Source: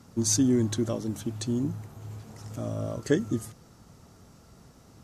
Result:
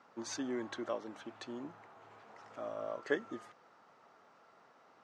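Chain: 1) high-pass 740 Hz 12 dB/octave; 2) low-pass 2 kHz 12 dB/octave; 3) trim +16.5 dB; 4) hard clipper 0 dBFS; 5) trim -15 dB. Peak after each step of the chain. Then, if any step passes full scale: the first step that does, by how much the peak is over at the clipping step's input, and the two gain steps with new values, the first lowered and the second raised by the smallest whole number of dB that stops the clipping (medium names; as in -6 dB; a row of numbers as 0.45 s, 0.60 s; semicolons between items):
-13.0 dBFS, -19.0 dBFS, -2.5 dBFS, -2.5 dBFS, -17.5 dBFS; nothing clips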